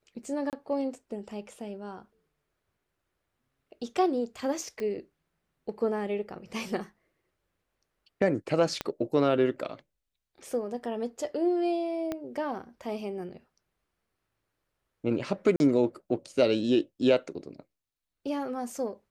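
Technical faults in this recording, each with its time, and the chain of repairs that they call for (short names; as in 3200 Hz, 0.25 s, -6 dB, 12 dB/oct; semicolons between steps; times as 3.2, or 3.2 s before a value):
0.5–0.53 gap 28 ms
4.8 pop -24 dBFS
8.81 pop -15 dBFS
12.12 pop -19 dBFS
15.56–15.6 gap 41 ms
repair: de-click; interpolate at 0.5, 28 ms; interpolate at 15.56, 41 ms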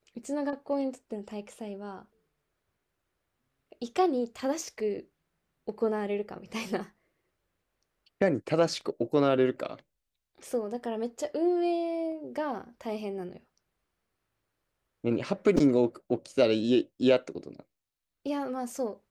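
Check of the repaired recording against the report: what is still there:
8.81 pop
12.12 pop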